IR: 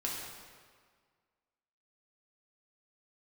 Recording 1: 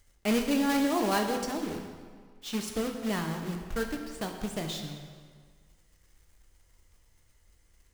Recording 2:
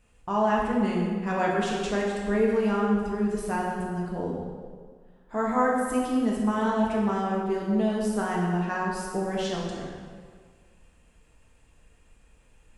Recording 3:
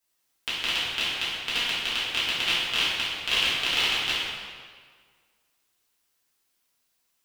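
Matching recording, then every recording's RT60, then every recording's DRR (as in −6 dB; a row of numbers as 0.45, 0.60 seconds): 2; 1.7, 1.7, 1.7 seconds; 3.0, −4.0, −11.0 decibels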